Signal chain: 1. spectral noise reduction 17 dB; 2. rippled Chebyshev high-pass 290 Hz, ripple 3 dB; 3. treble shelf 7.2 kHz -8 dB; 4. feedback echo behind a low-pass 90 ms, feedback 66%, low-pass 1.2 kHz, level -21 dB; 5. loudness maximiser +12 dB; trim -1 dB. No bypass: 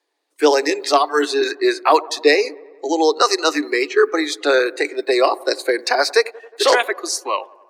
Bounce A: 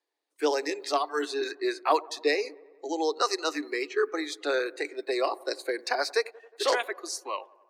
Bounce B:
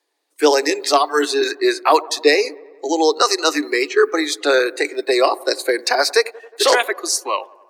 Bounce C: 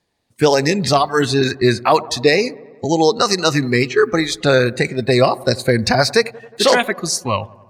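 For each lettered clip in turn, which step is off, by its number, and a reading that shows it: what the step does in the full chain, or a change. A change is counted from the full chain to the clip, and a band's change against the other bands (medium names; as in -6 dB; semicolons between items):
5, crest factor change +4.0 dB; 3, 8 kHz band +3.5 dB; 2, crest factor change -1.5 dB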